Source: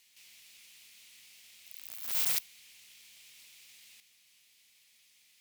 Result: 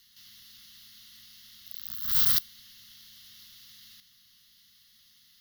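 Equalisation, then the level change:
elliptic band-stop filter 240–1,100 Hz
low-shelf EQ 350 Hz +9 dB
phaser with its sweep stopped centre 2,400 Hz, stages 6
+8.0 dB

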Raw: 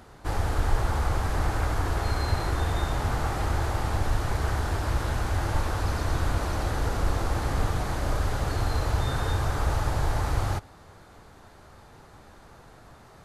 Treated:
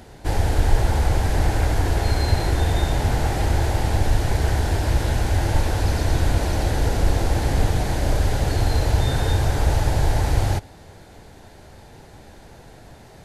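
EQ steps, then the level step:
parametric band 1,200 Hz −13.5 dB 0.46 octaves
+7.0 dB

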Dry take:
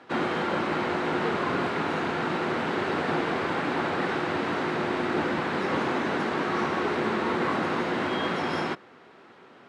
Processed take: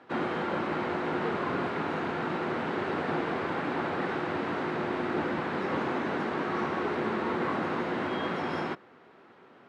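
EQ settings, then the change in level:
high-shelf EQ 3,500 Hz −8.5 dB
−3.0 dB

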